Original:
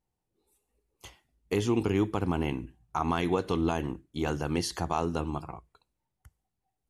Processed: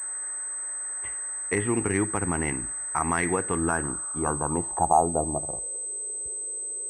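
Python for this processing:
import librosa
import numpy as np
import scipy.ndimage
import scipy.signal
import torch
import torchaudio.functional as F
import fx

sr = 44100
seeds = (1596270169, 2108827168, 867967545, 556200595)

y = fx.dmg_noise_band(x, sr, seeds[0], low_hz=330.0, high_hz=1600.0, level_db=-56.0)
y = fx.filter_sweep_lowpass(y, sr, from_hz=1900.0, to_hz=440.0, start_s=3.39, end_s=5.94, q=5.7)
y = fx.pwm(y, sr, carrier_hz=8200.0)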